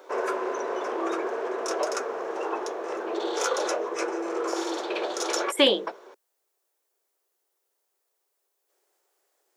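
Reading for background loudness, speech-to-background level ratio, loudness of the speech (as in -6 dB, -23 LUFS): -29.5 LUFS, 7.0 dB, -22.5 LUFS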